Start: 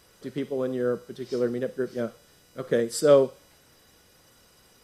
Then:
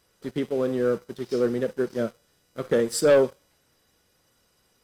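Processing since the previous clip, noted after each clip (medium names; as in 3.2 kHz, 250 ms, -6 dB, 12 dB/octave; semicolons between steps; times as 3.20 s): waveshaping leveller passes 2; trim -4.5 dB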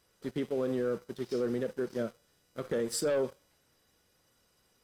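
peak limiter -20 dBFS, peak gain reduction 9.5 dB; trim -4 dB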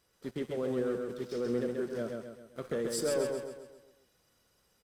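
feedback delay 133 ms, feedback 46%, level -4 dB; trim -2.5 dB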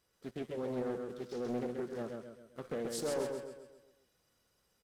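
loudspeaker Doppler distortion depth 0.43 ms; trim -4.5 dB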